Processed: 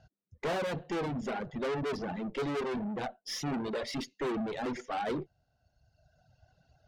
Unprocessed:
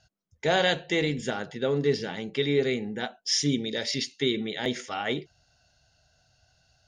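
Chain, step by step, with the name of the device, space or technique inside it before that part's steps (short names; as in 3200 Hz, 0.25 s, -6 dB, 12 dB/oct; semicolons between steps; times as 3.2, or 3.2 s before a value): tilt shelf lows +9 dB, about 1300 Hz; 2.77–3.75 HPF 98 Hz 24 dB/oct; tube preamp driven hard (tube stage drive 33 dB, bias 0.6; low shelf 140 Hz -6 dB; high shelf 6100 Hz -8 dB); reverb removal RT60 1.5 s; gain +4 dB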